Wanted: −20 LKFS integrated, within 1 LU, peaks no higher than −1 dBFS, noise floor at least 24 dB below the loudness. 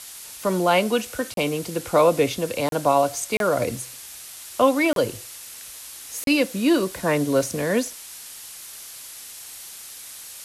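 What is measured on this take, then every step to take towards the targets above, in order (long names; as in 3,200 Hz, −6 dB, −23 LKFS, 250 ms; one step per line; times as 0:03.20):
number of dropouts 5; longest dropout 32 ms; background noise floor −40 dBFS; target noise floor −47 dBFS; integrated loudness −22.5 LKFS; sample peak −6.5 dBFS; target loudness −20.0 LKFS
→ repair the gap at 0:01.34/0:02.69/0:03.37/0:04.93/0:06.24, 32 ms
noise reduction from a noise print 7 dB
level +2.5 dB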